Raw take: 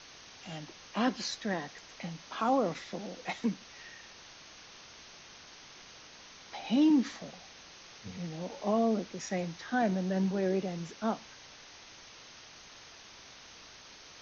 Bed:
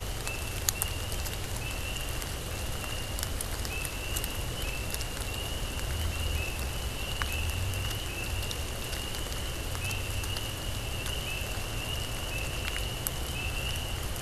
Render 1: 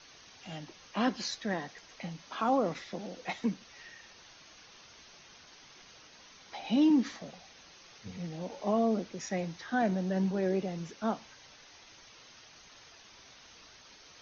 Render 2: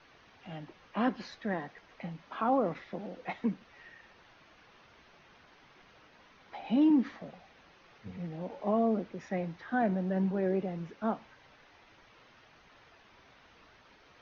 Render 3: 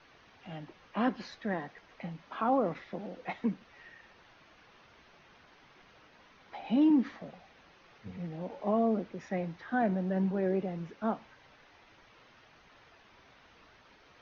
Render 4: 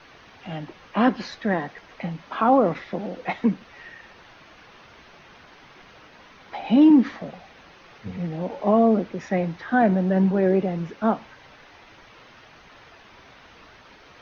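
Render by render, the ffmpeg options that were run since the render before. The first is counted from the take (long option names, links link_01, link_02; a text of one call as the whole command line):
ffmpeg -i in.wav -af "afftdn=noise_reduction=6:noise_floor=-53" out.wav
ffmpeg -i in.wav -af "lowpass=2200" out.wav
ffmpeg -i in.wav -af anull out.wav
ffmpeg -i in.wav -af "volume=10.5dB" out.wav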